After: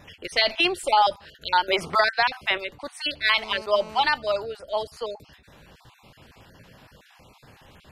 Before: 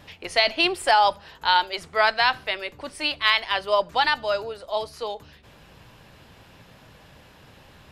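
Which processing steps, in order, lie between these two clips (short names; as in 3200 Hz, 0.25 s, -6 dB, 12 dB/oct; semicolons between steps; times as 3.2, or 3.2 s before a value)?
random spectral dropouts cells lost 28%; 1.68–2.58 three-band squash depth 100%; 3.38–4.02 GSM buzz -41 dBFS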